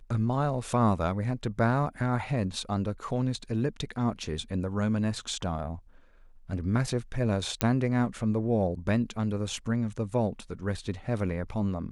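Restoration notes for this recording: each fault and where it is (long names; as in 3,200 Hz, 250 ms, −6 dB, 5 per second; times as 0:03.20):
0:07.61: click −8 dBFS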